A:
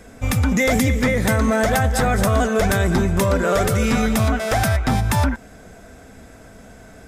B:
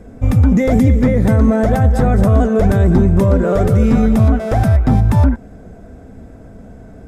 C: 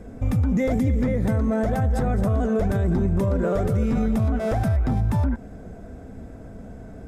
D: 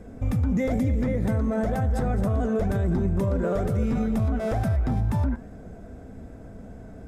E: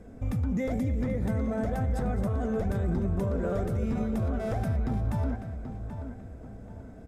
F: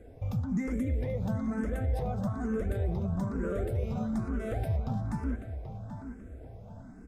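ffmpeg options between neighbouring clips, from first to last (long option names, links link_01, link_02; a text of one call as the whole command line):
ffmpeg -i in.wav -af "tiltshelf=frequency=970:gain=10,volume=-1.5dB" out.wav
ffmpeg -i in.wav -af "alimiter=limit=-12.5dB:level=0:latency=1:release=90,volume=-2.5dB" out.wav
ffmpeg -i in.wav -af "flanger=delay=9.3:depth=9.2:regen=-88:speed=0.73:shape=triangular,volume=2dB" out.wav
ffmpeg -i in.wav -filter_complex "[0:a]asplit=2[link_01][link_02];[link_02]adelay=782,lowpass=frequency=3600:poles=1,volume=-9dB,asplit=2[link_03][link_04];[link_04]adelay=782,lowpass=frequency=3600:poles=1,volume=0.34,asplit=2[link_05][link_06];[link_06]adelay=782,lowpass=frequency=3600:poles=1,volume=0.34,asplit=2[link_07][link_08];[link_08]adelay=782,lowpass=frequency=3600:poles=1,volume=0.34[link_09];[link_01][link_03][link_05][link_07][link_09]amix=inputs=5:normalize=0,volume=-5dB" out.wav
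ffmpeg -i in.wav -filter_complex "[0:a]asplit=2[link_01][link_02];[link_02]afreqshift=1.1[link_03];[link_01][link_03]amix=inputs=2:normalize=1" out.wav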